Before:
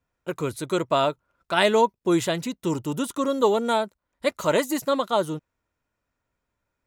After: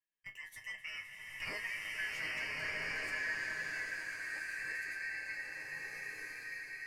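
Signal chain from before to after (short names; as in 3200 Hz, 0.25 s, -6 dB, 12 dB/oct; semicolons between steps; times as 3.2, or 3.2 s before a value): four-band scrambler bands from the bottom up 2143; Doppler pass-by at 1.49, 29 m/s, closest 13 m; dynamic EQ 710 Hz, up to +7 dB, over -39 dBFS, Q 0.73; compressor 4:1, threshold -35 dBFS, peak gain reduction 18.5 dB; resonator bank G#2 major, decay 0.2 s; on a send: swelling echo 86 ms, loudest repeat 5, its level -17 dB; on the sum: bloom reverb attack 1.47 s, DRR -6 dB; gain +1.5 dB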